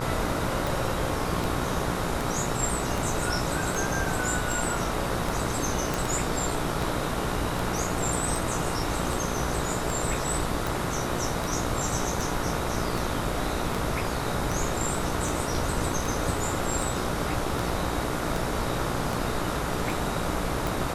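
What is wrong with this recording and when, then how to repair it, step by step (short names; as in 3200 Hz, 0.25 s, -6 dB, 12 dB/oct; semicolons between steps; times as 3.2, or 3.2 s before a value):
buzz 60 Hz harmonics 24 -33 dBFS
tick 78 rpm
5.94 pop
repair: de-click; de-hum 60 Hz, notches 24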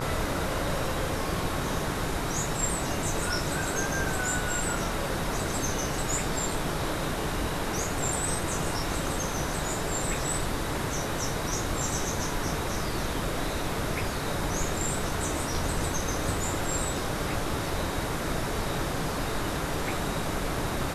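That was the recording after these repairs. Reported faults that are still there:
none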